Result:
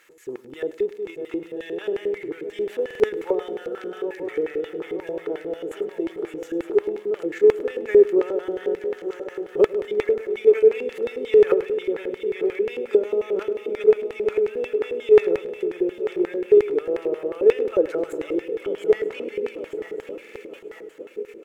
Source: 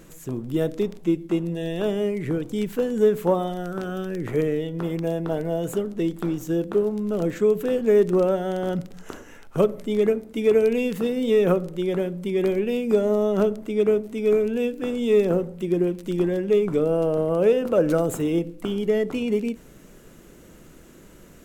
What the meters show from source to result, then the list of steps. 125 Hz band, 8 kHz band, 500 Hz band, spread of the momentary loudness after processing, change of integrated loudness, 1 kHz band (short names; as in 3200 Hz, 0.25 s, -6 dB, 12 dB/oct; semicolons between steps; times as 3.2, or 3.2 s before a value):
under -15 dB, n/a, +2.0 dB, 15 LU, +0.5 dB, -5.0 dB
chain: regenerating reverse delay 0.462 s, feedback 77%, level -9.5 dB; added noise violet -54 dBFS; in parallel at -0.5 dB: level quantiser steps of 17 dB; on the sum: tone controls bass -10 dB, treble 0 dB; LFO band-pass square 5.6 Hz 390–2000 Hz; high shelf 4500 Hz +9 dB; comb 2.3 ms, depth 37%; on a send: feedback echo 0.103 s, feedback 53%, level -19.5 dB; on the sum: stuck buffer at 2.86/20.21, samples 2048, times 2